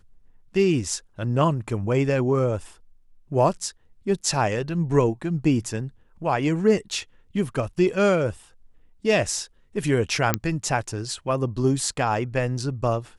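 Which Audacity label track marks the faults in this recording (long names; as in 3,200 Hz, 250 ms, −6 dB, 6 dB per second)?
10.340000	10.340000	click −4 dBFS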